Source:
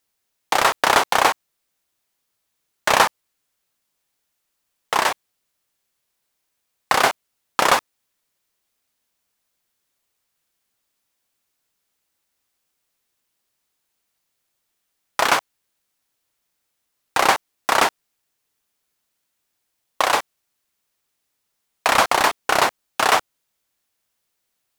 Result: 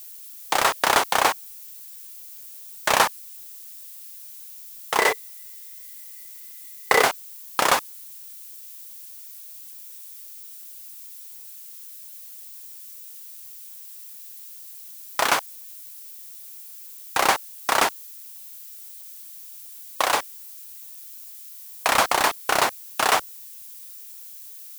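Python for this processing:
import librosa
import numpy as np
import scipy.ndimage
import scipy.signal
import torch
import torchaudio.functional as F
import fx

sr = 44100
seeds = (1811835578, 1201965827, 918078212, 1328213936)

y = fx.high_shelf(x, sr, hz=7600.0, db=6.5)
y = fx.dmg_noise_colour(y, sr, seeds[0], colour='violet', level_db=-38.0)
y = fx.small_body(y, sr, hz=(440.0, 2000.0), ring_ms=45, db=17, at=(4.98, 7.04))
y = F.gain(torch.from_numpy(y), -3.5).numpy()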